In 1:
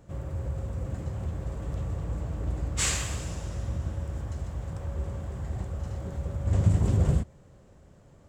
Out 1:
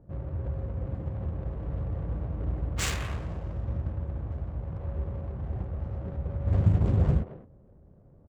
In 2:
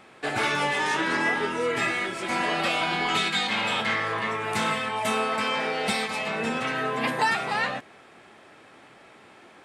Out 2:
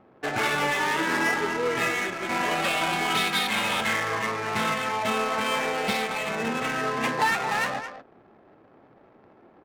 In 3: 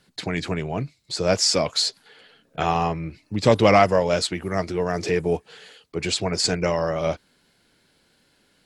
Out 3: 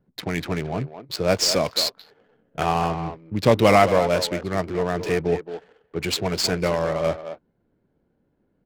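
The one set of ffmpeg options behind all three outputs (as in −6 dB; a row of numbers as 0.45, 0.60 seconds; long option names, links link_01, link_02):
-filter_complex "[0:a]asplit=2[link_01][link_02];[link_02]adelay=220,highpass=300,lowpass=3400,asoftclip=type=hard:threshold=-11dB,volume=-9dB[link_03];[link_01][link_03]amix=inputs=2:normalize=0,adynamicsmooth=sensitivity=6:basefreq=560"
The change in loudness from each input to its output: −0.5, 0.0, 0.0 LU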